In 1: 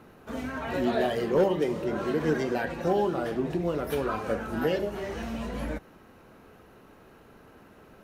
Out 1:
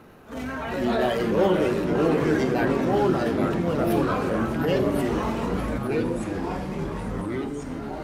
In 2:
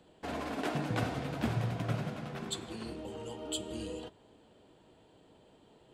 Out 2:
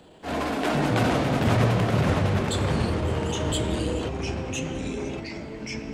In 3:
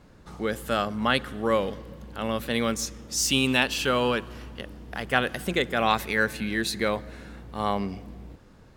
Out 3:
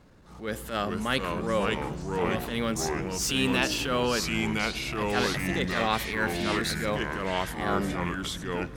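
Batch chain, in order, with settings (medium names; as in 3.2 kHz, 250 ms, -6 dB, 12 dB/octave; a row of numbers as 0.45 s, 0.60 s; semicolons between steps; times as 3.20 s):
transient shaper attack -10 dB, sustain +2 dB; ever faster or slower copies 343 ms, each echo -3 st, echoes 3; peak normalisation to -9 dBFS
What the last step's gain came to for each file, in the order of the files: +3.5 dB, +11.5 dB, -2.0 dB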